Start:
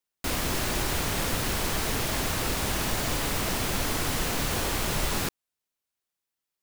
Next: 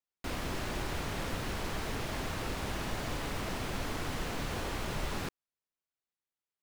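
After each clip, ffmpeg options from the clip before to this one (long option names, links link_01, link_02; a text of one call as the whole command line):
ffmpeg -i in.wav -af "lowpass=frequency=3000:poles=1,volume=-6.5dB" out.wav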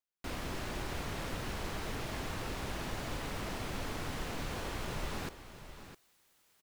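ffmpeg -i in.wav -af "areverse,acompressor=mode=upward:threshold=-45dB:ratio=2.5,areverse,aecho=1:1:658:0.251,volume=-3dB" out.wav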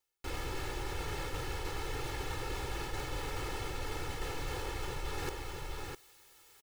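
ffmpeg -i in.wav -af "aecho=1:1:2.3:0.95,areverse,acompressor=threshold=-41dB:ratio=6,areverse,volume=6.5dB" out.wav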